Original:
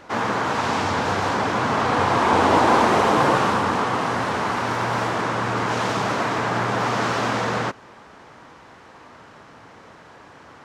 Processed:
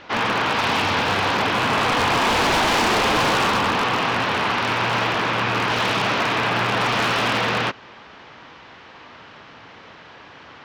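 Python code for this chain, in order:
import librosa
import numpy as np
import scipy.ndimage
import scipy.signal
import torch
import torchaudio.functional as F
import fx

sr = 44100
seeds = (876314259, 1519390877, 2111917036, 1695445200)

y = fx.rattle_buzz(x, sr, strikes_db=-32.0, level_db=-26.0)
y = scipy.signal.sosfilt(scipy.signal.butter(4, 5800.0, 'lowpass', fs=sr, output='sos'), y)
y = fx.peak_eq(y, sr, hz=3000.0, db=9.5, octaves=1.4)
y = 10.0 ** (-13.5 / 20.0) * (np.abs((y / 10.0 ** (-13.5 / 20.0) + 3.0) % 4.0 - 2.0) - 1.0)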